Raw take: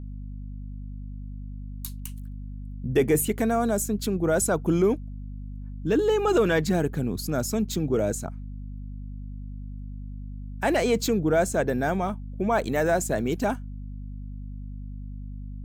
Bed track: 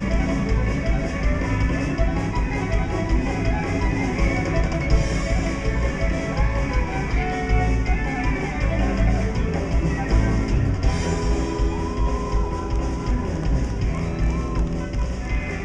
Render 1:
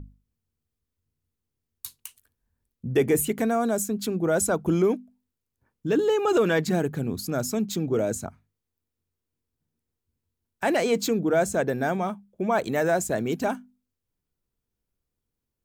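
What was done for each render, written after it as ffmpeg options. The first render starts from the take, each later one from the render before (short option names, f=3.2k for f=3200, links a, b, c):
-af "bandreject=f=50:t=h:w=6,bandreject=f=100:t=h:w=6,bandreject=f=150:t=h:w=6,bandreject=f=200:t=h:w=6,bandreject=f=250:t=h:w=6"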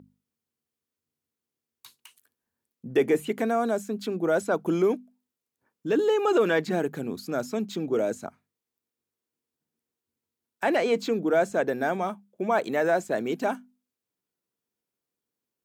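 -filter_complex "[0:a]highpass=240,acrossover=split=4100[a][b];[b]acompressor=threshold=-47dB:ratio=4:attack=1:release=60[c];[a][c]amix=inputs=2:normalize=0"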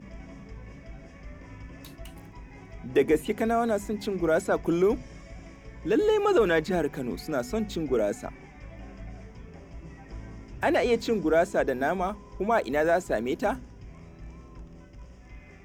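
-filter_complex "[1:a]volume=-22.5dB[a];[0:a][a]amix=inputs=2:normalize=0"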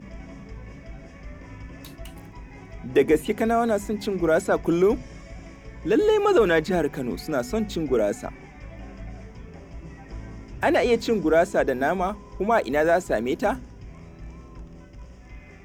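-af "volume=3.5dB"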